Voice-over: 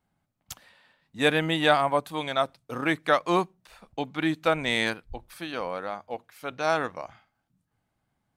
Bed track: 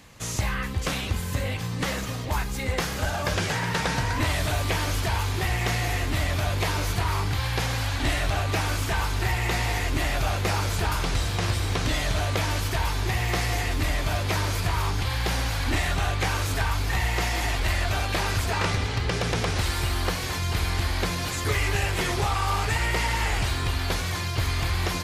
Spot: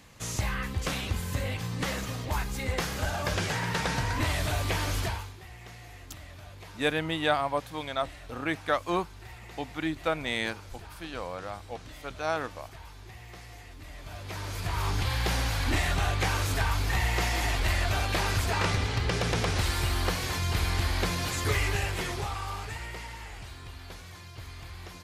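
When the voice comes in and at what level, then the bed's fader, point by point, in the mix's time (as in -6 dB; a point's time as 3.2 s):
5.60 s, -5.0 dB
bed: 5.05 s -3.5 dB
5.38 s -21 dB
13.82 s -21 dB
14.94 s -2 dB
21.54 s -2 dB
23.28 s -17.5 dB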